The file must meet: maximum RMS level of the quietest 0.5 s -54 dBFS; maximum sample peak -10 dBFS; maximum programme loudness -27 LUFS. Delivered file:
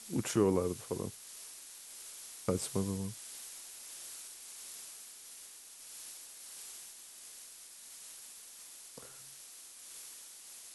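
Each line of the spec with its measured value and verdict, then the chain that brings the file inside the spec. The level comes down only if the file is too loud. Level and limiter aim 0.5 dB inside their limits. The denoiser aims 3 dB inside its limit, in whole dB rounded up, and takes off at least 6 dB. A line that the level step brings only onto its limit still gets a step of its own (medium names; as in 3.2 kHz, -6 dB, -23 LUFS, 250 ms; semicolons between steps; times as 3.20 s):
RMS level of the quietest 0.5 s -52 dBFS: fail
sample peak -16.5 dBFS: pass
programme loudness -41.0 LUFS: pass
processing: noise reduction 6 dB, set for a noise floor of -52 dBFS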